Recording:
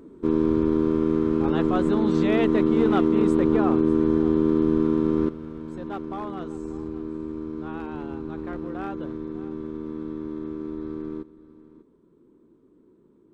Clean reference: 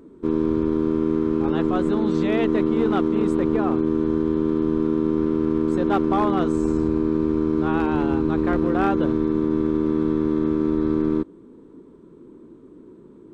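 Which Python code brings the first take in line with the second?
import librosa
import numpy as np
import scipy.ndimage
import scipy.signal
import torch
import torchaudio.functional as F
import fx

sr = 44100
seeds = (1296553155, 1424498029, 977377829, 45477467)

y = fx.fix_echo_inverse(x, sr, delay_ms=596, level_db=-18.0)
y = fx.gain(y, sr, db=fx.steps((0.0, 0.0), (5.29, 12.0)))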